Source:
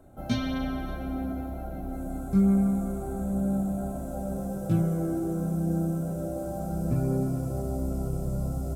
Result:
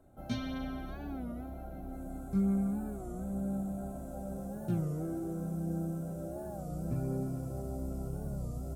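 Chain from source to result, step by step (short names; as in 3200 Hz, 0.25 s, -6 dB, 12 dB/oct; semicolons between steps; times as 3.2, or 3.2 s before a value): record warp 33 1/3 rpm, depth 160 cents; gain -8 dB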